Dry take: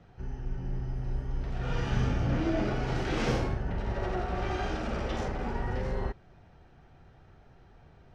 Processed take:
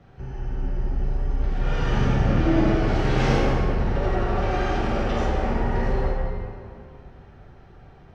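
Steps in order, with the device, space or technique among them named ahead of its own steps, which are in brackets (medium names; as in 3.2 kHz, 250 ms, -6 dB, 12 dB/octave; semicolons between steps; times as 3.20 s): swimming-pool hall (reverberation RT60 2.2 s, pre-delay 4 ms, DRR -3 dB; treble shelf 5.5 kHz -5 dB); trim +3.5 dB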